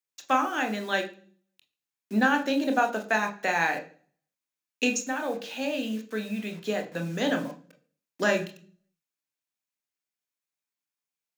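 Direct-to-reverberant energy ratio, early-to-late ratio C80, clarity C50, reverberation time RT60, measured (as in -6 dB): 4.5 dB, 18.0 dB, 13.5 dB, 0.45 s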